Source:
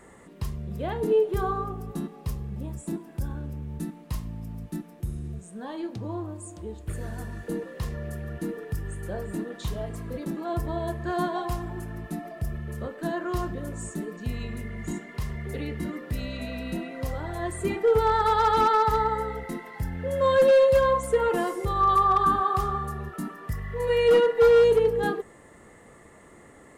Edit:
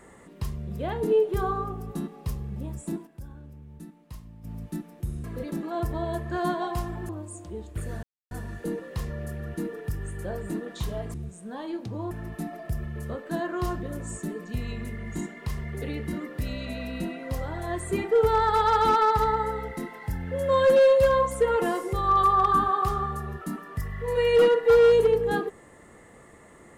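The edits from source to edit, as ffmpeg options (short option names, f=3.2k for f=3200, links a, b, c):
-filter_complex "[0:a]asplit=8[a][b][c][d][e][f][g][h];[a]atrim=end=3.07,asetpts=PTS-STARTPTS,afade=t=out:st=2.88:d=0.19:c=log:silence=0.298538[i];[b]atrim=start=3.07:end=4.44,asetpts=PTS-STARTPTS,volume=-10.5dB[j];[c]atrim=start=4.44:end=5.242,asetpts=PTS-STARTPTS,afade=t=in:d=0.19:c=log:silence=0.298538[k];[d]atrim=start=9.978:end=11.832[l];[e]atrim=start=6.208:end=7.15,asetpts=PTS-STARTPTS,afade=t=out:st=0.938:d=0.004:c=hsin,apad=pad_dur=0.28[m];[f]atrim=start=7.15:end=9.982,asetpts=PTS-STARTPTS,afade=t=in:d=0.004:c=hsin[n];[g]atrim=start=5.238:end=6.212[o];[h]atrim=start=11.828[p];[i][j][k]concat=n=3:v=0:a=1[q];[q][l]acrossfade=d=0.004:c1=hsin:c2=hsin[r];[m][n]concat=n=2:v=0:a=1[s];[r][s]acrossfade=d=0.004:c1=hsin:c2=hsin[t];[t][o]acrossfade=d=0.004:c1=hsin:c2=hsin[u];[u][p]acrossfade=d=0.004:c1=hsin:c2=hsin"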